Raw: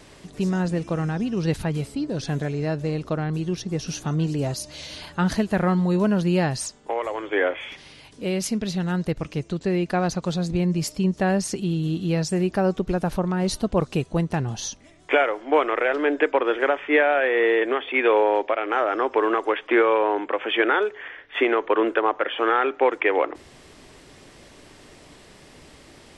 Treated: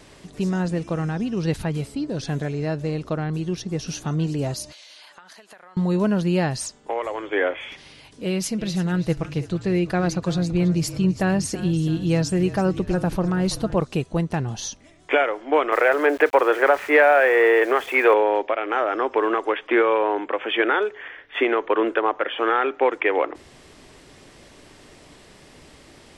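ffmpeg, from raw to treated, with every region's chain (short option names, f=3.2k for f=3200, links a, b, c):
-filter_complex "[0:a]asettb=1/sr,asplit=3[a][b][c];[a]atrim=end=4.724[d];[b]atrim=start=4.72:end=5.77,asetpts=PTS-STARTPTS,afade=t=in:d=0.004:c=qsin,afade=t=out:st=1.046:d=0.004:c=qsin,highpass=790,acompressor=threshold=-42dB:ratio=12:attack=3.2:release=140:knee=1:detection=peak[e];[c]atrim=start=5.766[f];[d][e]acrossfade=d=0.004:c1=hsin:c2=qsin[g];[g][f]acrossfade=d=0.004:c1=qsin:c2=hsin,asettb=1/sr,asplit=3[h][i][j];[h]atrim=end=8.254[k];[i]atrim=start=8.25:end=13.76,asetpts=PTS-STARTPTS,afade=t=in:d=0.004:c=qsin,afade=t=out:st=5.506:d=0.004:c=qsin,aecho=1:1:6.1:0.36,atrim=end_sample=242991,asplit=6[l][m][n][o][p][q];[m]adelay=330,afreqshift=-33,volume=-15dB[r];[n]adelay=660,afreqshift=-66,volume=-20.4dB[s];[o]adelay=990,afreqshift=-99,volume=-25.7dB[t];[p]adelay=1320,afreqshift=-132,volume=-31.1dB[u];[q]adelay=1650,afreqshift=-165,volume=-36.4dB[v];[l][r][s][t][u][v]amix=inputs=6:normalize=0,atrim=end_sample=242991[w];[j]atrim=start=13.756[x];[k][w]acrossfade=d=0.004:c1=hsin:c2=qsin[y];[y][x]acrossfade=d=0.004:c1=qsin:c2=hsin,asettb=1/sr,asplit=3[z][aa][ab];[z]atrim=end=15.724[ac];[aa]atrim=start=15.72:end=18.14,asetpts=PTS-STARTPTS,afade=t=in:d=0.004:c=qsin,afade=t=out:st=2.416:d=0.004:c=qsin,acontrast=66,highpass=430,lowpass=2.2k,aeval=exprs='val(0)*gte(abs(val(0)),0.015)':c=same[ad];[ab]atrim=start=18.136[ae];[ac][ad]acrossfade=d=0.004:c1=hsin:c2=qsin[af];[af][ae]acrossfade=d=0.004:c1=qsin:c2=hsin"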